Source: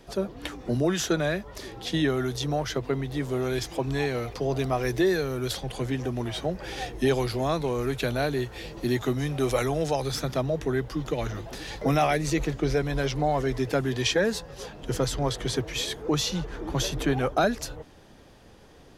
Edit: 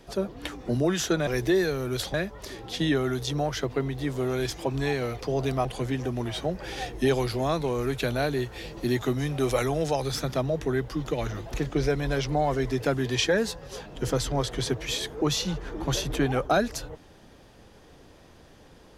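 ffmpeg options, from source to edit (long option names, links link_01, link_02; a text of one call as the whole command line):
ffmpeg -i in.wav -filter_complex "[0:a]asplit=5[link_01][link_02][link_03][link_04][link_05];[link_01]atrim=end=1.272[link_06];[link_02]atrim=start=4.778:end=5.652[link_07];[link_03]atrim=start=1.268:end=4.782[link_08];[link_04]atrim=start=5.648:end=11.542[link_09];[link_05]atrim=start=12.408[link_10];[link_06][link_07]acrossfade=duration=0.004:curve1=hsin:curve2=hsin[link_11];[link_11][link_08]acrossfade=duration=0.004:curve1=hsin:curve2=hsin[link_12];[link_12][link_09]acrossfade=duration=0.004:curve1=hsin:curve2=hsin[link_13];[link_13][link_10]acrossfade=duration=0.004:curve1=hsin:curve2=hsin" out.wav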